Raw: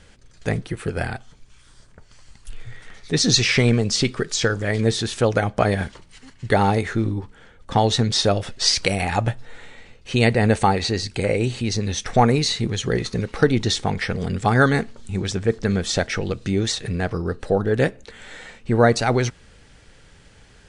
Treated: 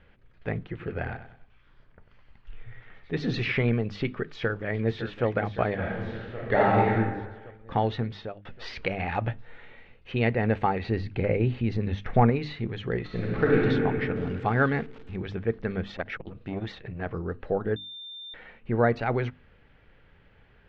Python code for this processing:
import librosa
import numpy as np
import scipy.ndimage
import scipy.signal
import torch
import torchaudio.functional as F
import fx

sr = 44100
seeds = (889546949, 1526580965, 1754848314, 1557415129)

y = fx.echo_feedback(x, sr, ms=96, feedback_pct=37, wet_db=-11.0, at=(0.63, 3.52))
y = fx.echo_throw(y, sr, start_s=4.28, length_s=0.98, ms=560, feedback_pct=65, wet_db=-11.0)
y = fx.reverb_throw(y, sr, start_s=5.78, length_s=1.16, rt60_s=1.2, drr_db=-4.0)
y = fx.high_shelf(y, sr, hz=4700.0, db=10.5, at=(9.05, 10.12))
y = fx.low_shelf(y, sr, hz=320.0, db=7.0, at=(10.86, 12.3))
y = fx.reverb_throw(y, sr, start_s=13.04, length_s=0.57, rt60_s=2.7, drr_db=-5.0)
y = fx.crossing_spikes(y, sr, level_db=-20.5, at=(14.16, 15.16))
y = fx.transformer_sat(y, sr, knee_hz=500.0, at=(15.9, 17.06))
y = fx.edit(y, sr, fx.fade_out_span(start_s=7.9, length_s=0.55),
    fx.bleep(start_s=17.76, length_s=0.58, hz=3590.0, db=-22.0), tone=tone)
y = scipy.signal.sosfilt(scipy.signal.butter(4, 2800.0, 'lowpass', fs=sr, output='sos'), y)
y = fx.hum_notches(y, sr, base_hz=50, count=6)
y = y * 10.0 ** (-7.0 / 20.0)